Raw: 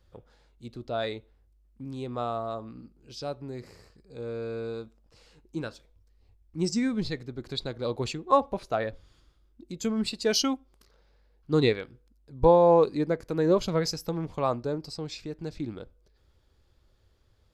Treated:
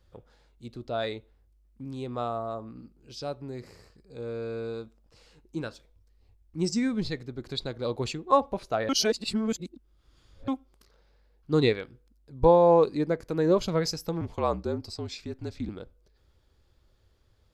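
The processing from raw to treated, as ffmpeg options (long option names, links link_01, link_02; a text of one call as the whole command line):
ffmpeg -i in.wav -filter_complex "[0:a]asettb=1/sr,asplit=3[link_01][link_02][link_03];[link_01]atrim=end=2.284[link_04];[link_02]atrim=start=2.28:end=2.76,asetpts=PTS-STARTPTS,afade=type=in:duration=0.004:curve=qsin,afade=type=out:start_time=0.476:duration=0.004:curve=qsin,equalizer=frequency=3500:width_type=o:width=1.5:gain=-6.5[link_05];[link_03]atrim=start=2.756[link_06];[link_04][link_05]acrossfade=duration=0.004:curve1=hsin:curve2=qsin[link_07];[link_07][link_06]acrossfade=duration=0.004:curve1=qsin:curve2=hsin,asettb=1/sr,asplit=3[link_08][link_09][link_10];[link_08]atrim=end=14.214[link_11];[link_09]atrim=start=14.21:end=15.69,asetpts=PTS-STARTPTS,afade=type=in:duration=0.004:curve=qsin,afade=type=out:start_time=1.476:duration=0.004:curve=qsin,afreqshift=-49[link_12];[link_10]atrim=start=15.686[link_13];[link_11][link_12]acrossfade=duration=0.004:curve1=hsin:curve2=qsin[link_14];[link_14][link_13]acrossfade=duration=0.004:curve1=qsin:curve2=hsin,asplit=3[link_15][link_16][link_17];[link_15]atrim=end=8.892[link_18];[link_16]atrim=start=8.888:end=10.482,asetpts=PTS-STARTPTS,areverse[link_19];[link_17]atrim=start=10.478[link_20];[link_18][link_19]acrossfade=duration=0.004:curve1=hsin:curve2=hsin[link_21];[link_21][link_20]acrossfade=duration=0.004:curve1=hsin:curve2=hsin" out.wav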